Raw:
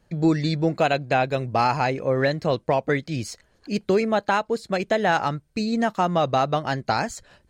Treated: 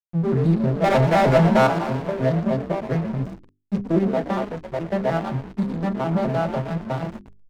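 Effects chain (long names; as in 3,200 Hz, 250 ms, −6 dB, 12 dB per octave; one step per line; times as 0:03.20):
vocoder with an arpeggio as carrier major triad, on C3, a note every 104 ms
0:00.84–0:01.67: mid-hump overdrive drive 38 dB, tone 1,500 Hz, clips at −10 dBFS
echo with shifted repeats 117 ms, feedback 64%, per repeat +56 Hz, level −9.5 dB
on a send at −5.5 dB: convolution reverb, pre-delay 3 ms
on the sum: slack as between gear wheels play −23 dBFS
mains-hum notches 50/100/150/200/250/300/350/400 Hz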